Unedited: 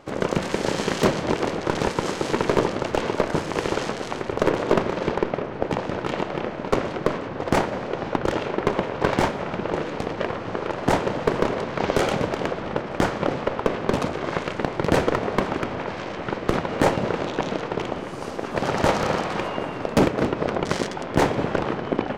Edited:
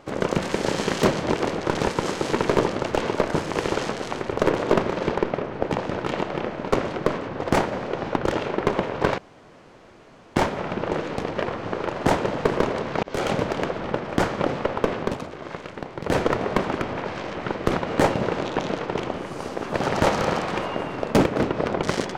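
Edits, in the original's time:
0:09.18: splice in room tone 1.18 s
0:11.85–0:12.12: fade in
0:13.81–0:15.03: duck −8.5 dB, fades 0.18 s

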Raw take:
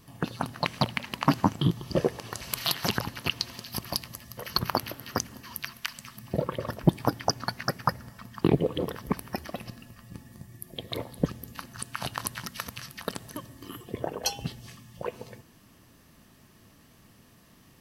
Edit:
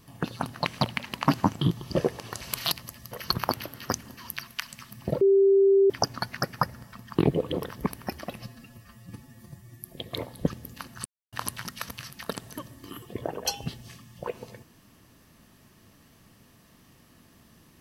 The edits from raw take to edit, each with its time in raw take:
0:02.72–0:03.98: remove
0:06.47–0:07.16: beep over 392 Hz −15.5 dBFS
0:09.66–0:10.61: time-stretch 1.5×
0:11.84–0:12.11: silence

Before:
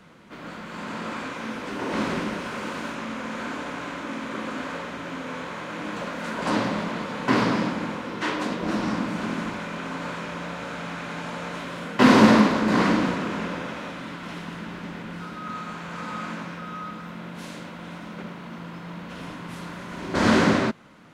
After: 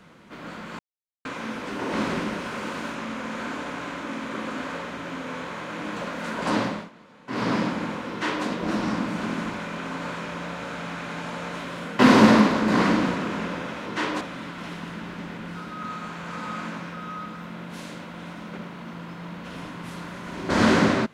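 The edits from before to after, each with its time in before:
0:00.79–0:01.25: silence
0:06.63–0:07.54: duck −20 dB, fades 0.27 s
0:08.11–0:08.46: duplicate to 0:13.86

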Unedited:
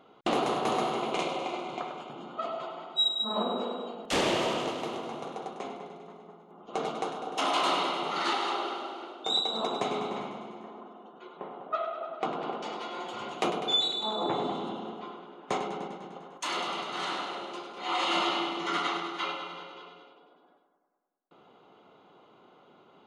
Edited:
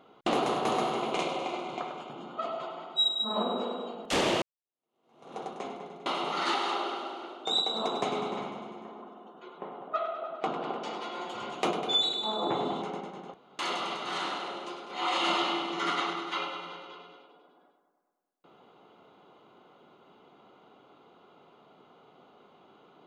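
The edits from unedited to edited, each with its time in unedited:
0:04.42–0:05.37: fade in exponential
0:06.06–0:07.85: remove
0:14.61–0:15.69: remove
0:16.21–0:16.46: fill with room tone

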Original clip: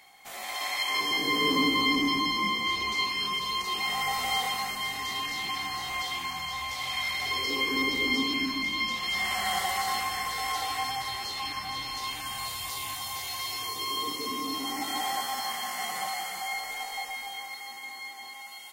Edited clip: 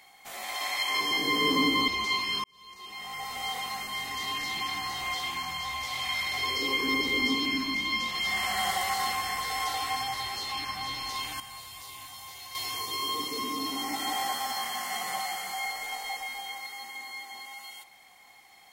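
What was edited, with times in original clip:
0:01.88–0:02.76: remove
0:03.32–0:05.26: fade in
0:12.28–0:13.43: clip gain −9 dB

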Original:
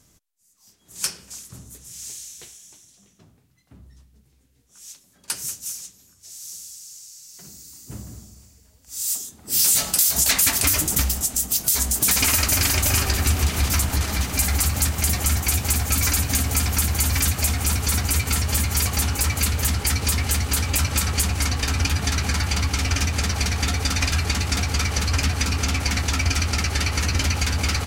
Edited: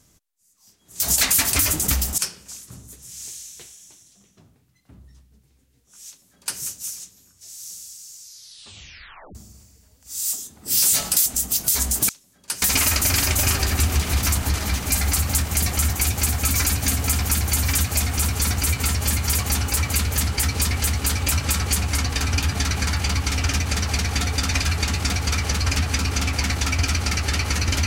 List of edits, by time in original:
0:04.89–0:05.42: duplicate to 0:12.09
0:07.02: tape stop 1.15 s
0:10.08–0:11.26: move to 0:01.00

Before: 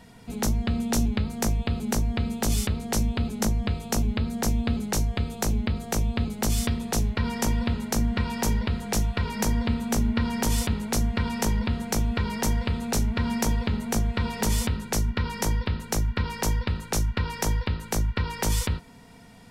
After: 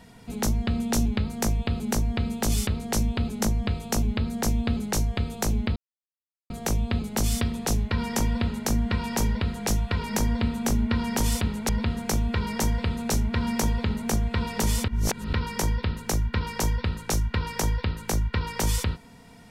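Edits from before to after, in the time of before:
0:05.76: splice in silence 0.74 s
0:10.95–0:11.52: remove
0:14.71–0:15.16: reverse

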